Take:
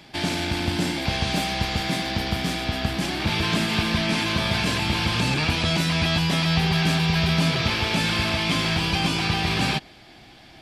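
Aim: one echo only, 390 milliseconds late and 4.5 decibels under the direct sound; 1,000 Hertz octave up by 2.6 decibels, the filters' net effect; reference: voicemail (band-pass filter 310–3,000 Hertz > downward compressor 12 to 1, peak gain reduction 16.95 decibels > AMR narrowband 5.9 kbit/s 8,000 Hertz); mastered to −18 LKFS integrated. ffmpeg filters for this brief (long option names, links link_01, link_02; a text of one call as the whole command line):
ffmpeg -i in.wav -af "highpass=310,lowpass=3000,equalizer=frequency=1000:width_type=o:gain=3.5,aecho=1:1:390:0.596,acompressor=threshold=-37dB:ratio=12,volume=26dB" -ar 8000 -c:a libopencore_amrnb -b:a 5900 out.amr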